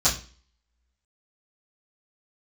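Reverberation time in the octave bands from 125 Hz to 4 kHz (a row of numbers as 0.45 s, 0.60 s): 0.40 s, 0.45 s, 0.40 s, 0.35 s, 0.40 s, 0.40 s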